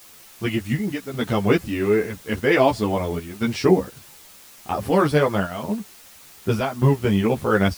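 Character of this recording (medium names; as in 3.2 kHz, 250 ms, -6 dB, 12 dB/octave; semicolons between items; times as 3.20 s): chopped level 0.88 Hz, depth 60%, duty 80%; a quantiser's noise floor 8-bit, dither triangular; a shimmering, thickened sound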